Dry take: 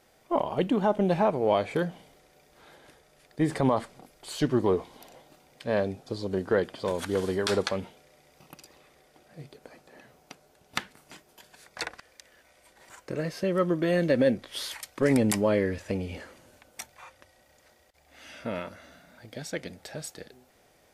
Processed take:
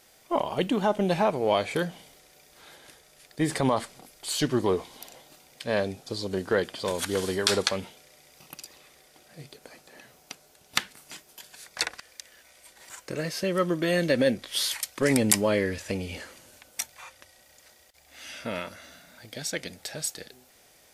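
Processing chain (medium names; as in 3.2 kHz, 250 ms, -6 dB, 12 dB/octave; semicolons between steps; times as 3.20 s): treble shelf 2.2 kHz +11.5 dB; trim -1 dB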